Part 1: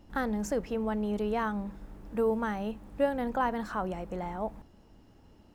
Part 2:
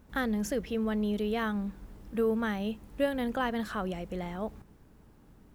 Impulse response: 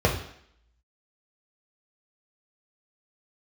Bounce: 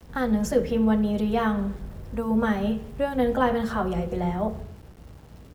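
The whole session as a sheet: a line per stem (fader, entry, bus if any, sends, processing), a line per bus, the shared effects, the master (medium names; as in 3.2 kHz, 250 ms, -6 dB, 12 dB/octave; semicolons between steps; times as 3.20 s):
+2.5 dB, 0.00 s, no send, none
0.0 dB, 7.8 ms, send -15 dB, slow attack 198 ms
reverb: on, RT60 0.65 s, pre-delay 3 ms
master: de-hum 45.88 Hz, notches 10; small samples zeroed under -48.5 dBFS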